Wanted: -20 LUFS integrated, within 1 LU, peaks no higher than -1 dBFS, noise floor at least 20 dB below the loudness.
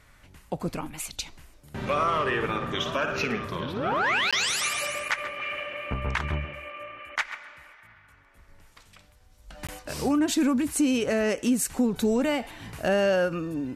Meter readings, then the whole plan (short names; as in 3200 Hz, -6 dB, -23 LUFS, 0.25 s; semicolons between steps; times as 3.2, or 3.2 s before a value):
dropouts 2; longest dropout 16 ms; loudness -27.0 LUFS; peak -15.0 dBFS; loudness target -20.0 LUFS
-> interpolate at 4.31/9.67, 16 ms; gain +7 dB